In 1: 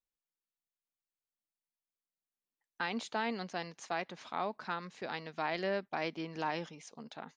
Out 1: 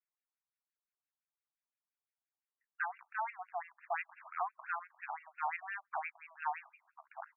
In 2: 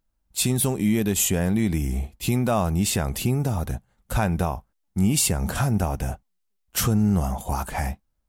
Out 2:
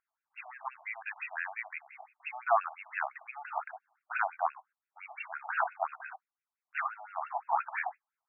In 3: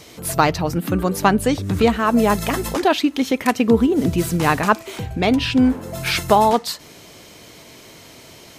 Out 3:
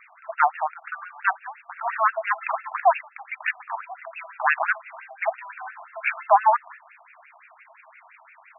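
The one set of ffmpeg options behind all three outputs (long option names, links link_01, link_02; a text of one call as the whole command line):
ffmpeg -i in.wav -af "aeval=exprs='0.891*(cos(1*acos(clip(val(0)/0.891,-1,1)))-cos(1*PI/2))+0.224*(cos(2*acos(clip(val(0)/0.891,-1,1)))-cos(2*PI/2))+0.178*(cos(5*acos(clip(val(0)/0.891,-1,1)))-cos(5*PI/2))+0.0891*(cos(7*acos(clip(val(0)/0.891,-1,1)))-cos(7*PI/2))':channel_layout=same,afftfilt=real='re*between(b*sr/1024,850*pow(2000/850,0.5+0.5*sin(2*PI*5.8*pts/sr))/1.41,850*pow(2000/850,0.5+0.5*sin(2*PI*5.8*pts/sr))*1.41)':imag='im*between(b*sr/1024,850*pow(2000/850,0.5+0.5*sin(2*PI*5.8*pts/sr))/1.41,850*pow(2000/850,0.5+0.5*sin(2*PI*5.8*pts/sr))*1.41)':win_size=1024:overlap=0.75" out.wav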